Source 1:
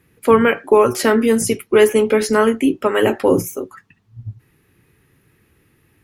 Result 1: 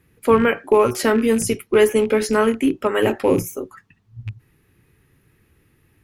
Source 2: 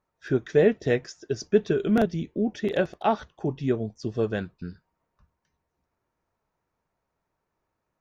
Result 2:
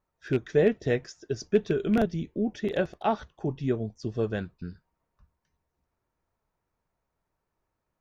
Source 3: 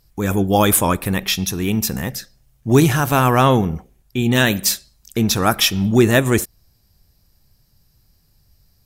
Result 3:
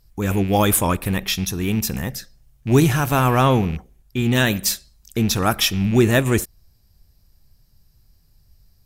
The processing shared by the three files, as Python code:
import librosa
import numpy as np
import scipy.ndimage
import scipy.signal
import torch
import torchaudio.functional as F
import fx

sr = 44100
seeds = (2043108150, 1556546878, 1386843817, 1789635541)

y = fx.rattle_buzz(x, sr, strikes_db=-22.0, level_db=-23.0)
y = fx.low_shelf(y, sr, hz=73.0, db=8.5)
y = F.gain(torch.from_numpy(y), -3.0).numpy()